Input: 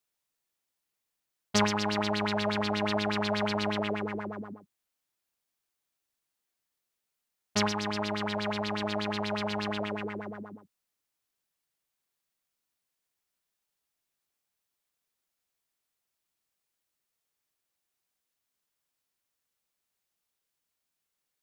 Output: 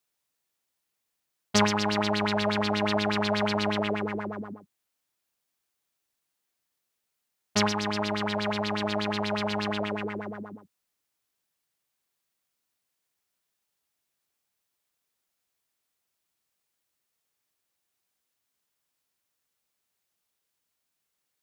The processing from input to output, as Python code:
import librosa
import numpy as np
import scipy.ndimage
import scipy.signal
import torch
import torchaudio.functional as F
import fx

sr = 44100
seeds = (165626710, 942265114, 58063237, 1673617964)

y = scipy.signal.sosfilt(scipy.signal.butter(2, 42.0, 'highpass', fs=sr, output='sos'), x)
y = F.gain(torch.from_numpy(y), 3.0).numpy()